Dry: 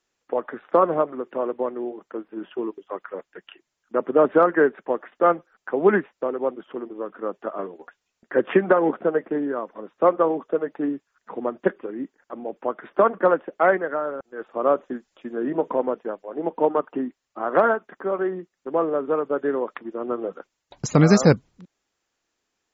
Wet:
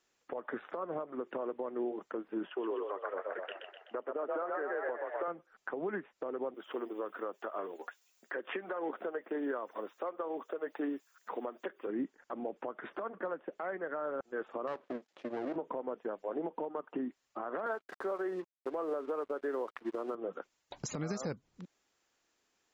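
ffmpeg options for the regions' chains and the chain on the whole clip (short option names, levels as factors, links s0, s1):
-filter_complex "[0:a]asettb=1/sr,asplit=3[s0][s1][s2];[s0]atrim=end=2.474[s3];[s1]atrim=start=2.47:end=5.28,asetpts=PTS-STARTPTS,afade=t=in:d=0.004:c=qsin,afade=t=out:st=2.806:d=0.004:c=qsin,highpass=410,lowpass=2900,asplit=8[s4][s5][s6][s7][s8][s9][s10][s11];[s5]adelay=126,afreqshift=39,volume=0.631[s12];[s6]adelay=252,afreqshift=78,volume=0.339[s13];[s7]adelay=378,afreqshift=117,volume=0.184[s14];[s8]adelay=504,afreqshift=156,volume=0.0989[s15];[s9]adelay=630,afreqshift=195,volume=0.0537[s16];[s10]adelay=756,afreqshift=234,volume=0.0288[s17];[s11]adelay=882,afreqshift=273,volume=0.0157[s18];[s4][s12][s13][s14][s15][s16][s17][s18]amix=inputs=8:normalize=0,atrim=end_sample=123921[s19];[s2]atrim=start=5.276[s20];[s3][s19]acrossfade=d=0.004:c1=hsin:c2=qsin[s21];[s21][s20]acrossfade=d=0.004:c1=qsin:c2=hsin,asettb=1/sr,asplit=3[s22][s23][s24];[s22]atrim=end=6.544[s25];[s23]atrim=start=6.54:end=11.87,asetpts=PTS-STARTPTS,afade=t=in:d=0.004:c=qsin,afade=t=out:st=5.326:d=0.004:c=qsin,highpass=230,aemphasis=mode=production:type=bsi[s26];[s24]atrim=start=11.866[s27];[s25][s26]acrossfade=d=0.004:c1=hsin:c2=qsin[s28];[s28][s27]acrossfade=d=0.004:c1=qsin:c2=hsin,asettb=1/sr,asplit=3[s29][s30][s31];[s29]atrim=end=14.674[s32];[s30]atrim=start=14.67:end=15.56,asetpts=PTS-STARTPTS,afade=t=in:d=0.004:c=qsin,afade=t=out:st=0.886:d=0.004:c=qsin,lowshelf=f=410:g=10.5,aeval=exprs='max(val(0),0)':c=same,highpass=280,lowpass=5500[s33];[s31]atrim=start=15.556[s34];[s32][s33]acrossfade=d=0.004:c1=hsin:c2=qsin[s35];[s35][s34]acrossfade=d=0.004:c1=qsin:c2=hsin,asettb=1/sr,asplit=3[s36][s37][s38];[s36]atrim=end=17.664[s39];[s37]atrim=start=17.66:end=20.15,asetpts=PTS-STARTPTS,afade=t=in:d=0.004:c=qsin,afade=t=out:st=2.486:d=0.004:c=qsin,highpass=310,acontrast=48,aeval=exprs='sgn(val(0))*max(abs(val(0))-0.00501,0)':c=same[s40];[s38]atrim=start=20.146[s41];[s39][s40]acrossfade=d=0.004:c1=hsin:c2=qsin[s42];[s42][s41]acrossfade=d=0.004:c1=qsin:c2=hsin,lowshelf=f=140:g=-5.5,acompressor=threshold=0.0316:ratio=6,alimiter=level_in=1.5:limit=0.0631:level=0:latency=1:release=148,volume=0.668"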